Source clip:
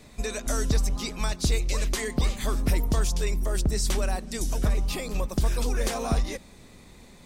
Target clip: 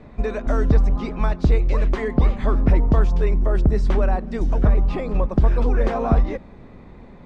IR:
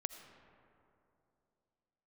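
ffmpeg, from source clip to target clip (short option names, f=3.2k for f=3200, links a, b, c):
-af "lowpass=1.4k,volume=8dB"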